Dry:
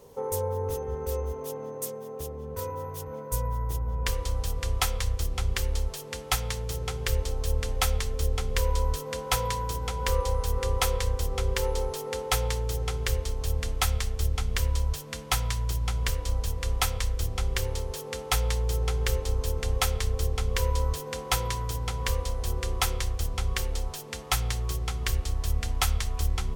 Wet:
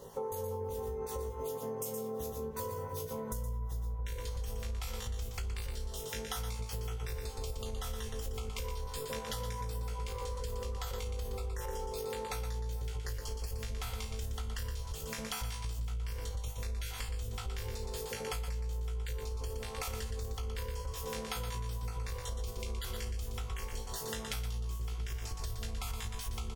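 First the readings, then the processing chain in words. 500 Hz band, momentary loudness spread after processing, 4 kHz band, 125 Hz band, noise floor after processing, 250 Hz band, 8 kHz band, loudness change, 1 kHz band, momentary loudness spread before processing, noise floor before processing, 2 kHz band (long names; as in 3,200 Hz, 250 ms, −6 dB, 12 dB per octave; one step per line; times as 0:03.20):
−7.5 dB, 2 LU, −11.0 dB, −10.0 dB, −42 dBFS, −5.5 dB, −10.5 dB, −9.5 dB, −10.0 dB, 7 LU, −39 dBFS, −11.5 dB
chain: time-frequency cells dropped at random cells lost 22%
flutter between parallel walls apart 3.1 metres, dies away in 0.23 s
brickwall limiter −22 dBFS, peak gain reduction 10.5 dB
on a send: single-tap delay 119 ms −6.5 dB
on the sum: downward compressor, threshold −37 dBFS, peak gain reduction 14 dB
level +1.5 dB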